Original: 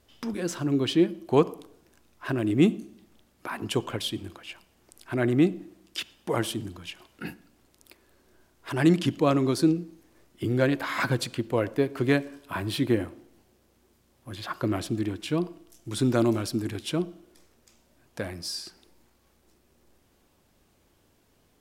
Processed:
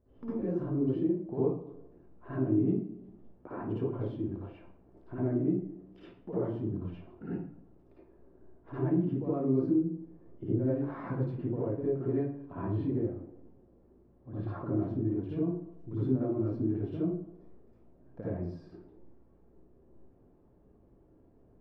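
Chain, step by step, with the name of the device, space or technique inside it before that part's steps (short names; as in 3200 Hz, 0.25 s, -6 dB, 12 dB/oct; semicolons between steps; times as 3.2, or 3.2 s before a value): television next door (compressor 4:1, threshold -33 dBFS, peak gain reduction 16 dB; LPF 580 Hz 12 dB/oct; reverb RT60 0.60 s, pre-delay 51 ms, DRR -10 dB); gain -5.5 dB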